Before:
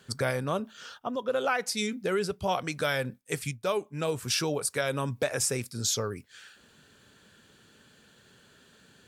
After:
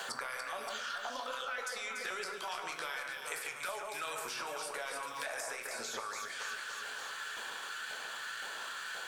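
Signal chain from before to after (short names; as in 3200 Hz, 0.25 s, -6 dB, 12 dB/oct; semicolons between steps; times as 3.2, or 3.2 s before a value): LFO high-pass saw up 1.9 Hz 720–1600 Hz; transient shaper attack -7 dB, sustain +8 dB; compressor, threshold -40 dBFS, peak gain reduction 17.5 dB; echo with dull and thin repeats by turns 0.143 s, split 2500 Hz, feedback 69%, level -4 dB; on a send at -5 dB: reverb RT60 0.60 s, pre-delay 6 ms; on the sum: three-band squash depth 100%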